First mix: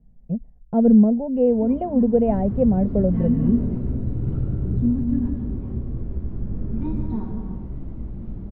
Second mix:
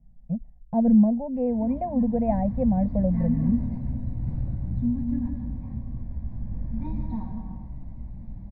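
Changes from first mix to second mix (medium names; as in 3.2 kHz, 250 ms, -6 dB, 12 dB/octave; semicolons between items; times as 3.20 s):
second sound -5.0 dB; master: add static phaser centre 2 kHz, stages 8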